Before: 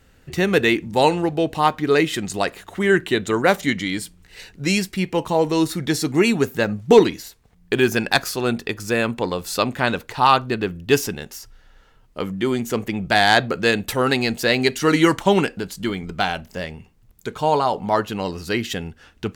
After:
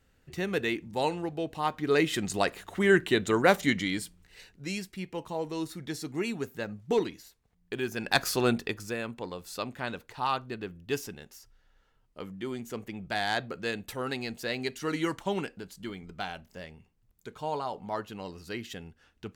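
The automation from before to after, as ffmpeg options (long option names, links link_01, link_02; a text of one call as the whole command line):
ffmpeg -i in.wav -af "volume=7.5dB,afade=type=in:start_time=1.63:duration=0.59:silence=0.421697,afade=type=out:start_time=3.77:duration=0.85:silence=0.316228,afade=type=in:start_time=7.96:duration=0.4:silence=0.237137,afade=type=out:start_time=8.36:duration=0.61:silence=0.251189" out.wav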